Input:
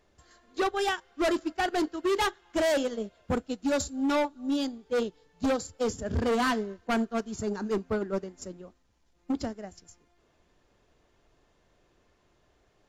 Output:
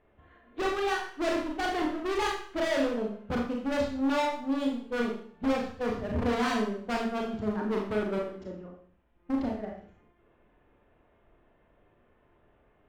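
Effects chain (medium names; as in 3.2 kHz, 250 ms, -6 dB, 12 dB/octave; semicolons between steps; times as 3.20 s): local Wiener filter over 9 samples; low-pass 3.4 kHz 24 dB/octave; one-sided clip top -35.5 dBFS, bottom -25.5 dBFS; Schroeder reverb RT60 0.53 s, combs from 26 ms, DRR -1 dB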